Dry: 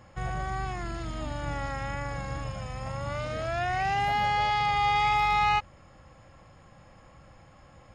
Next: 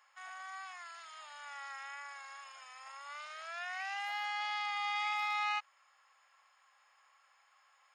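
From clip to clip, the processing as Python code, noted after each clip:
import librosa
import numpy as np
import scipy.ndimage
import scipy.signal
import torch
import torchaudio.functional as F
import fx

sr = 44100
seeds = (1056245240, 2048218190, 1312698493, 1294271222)

y = scipy.signal.sosfilt(scipy.signal.butter(4, 1000.0, 'highpass', fs=sr, output='sos'), x)
y = y * librosa.db_to_amplitude(-7.0)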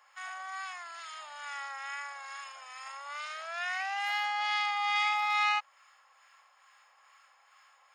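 y = fx.harmonic_tremolo(x, sr, hz=2.3, depth_pct=50, crossover_hz=1000.0)
y = y * librosa.db_to_amplitude(8.5)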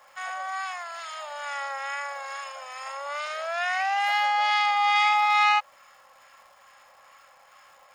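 y = fx.highpass_res(x, sr, hz=540.0, q=4.9)
y = fx.dmg_crackle(y, sr, seeds[0], per_s=410.0, level_db=-56.0)
y = y * librosa.db_to_amplitude(5.5)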